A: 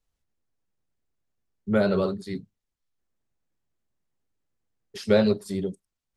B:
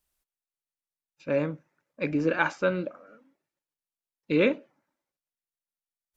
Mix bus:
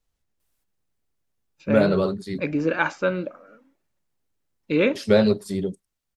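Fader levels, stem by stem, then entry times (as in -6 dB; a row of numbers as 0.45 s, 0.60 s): +2.5 dB, +2.5 dB; 0.00 s, 0.40 s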